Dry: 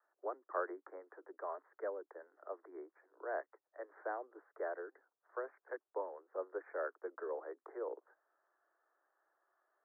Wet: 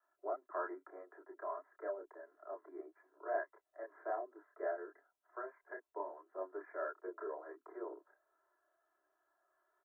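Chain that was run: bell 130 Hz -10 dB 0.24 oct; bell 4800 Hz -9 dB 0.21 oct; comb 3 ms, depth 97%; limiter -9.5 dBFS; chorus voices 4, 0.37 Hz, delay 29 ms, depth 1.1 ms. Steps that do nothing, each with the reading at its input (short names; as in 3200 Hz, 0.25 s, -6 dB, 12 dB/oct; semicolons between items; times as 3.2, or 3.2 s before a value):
bell 130 Hz: input band starts at 270 Hz; bell 4800 Hz: input band ends at 1900 Hz; limiter -9.5 dBFS: input peak -22.5 dBFS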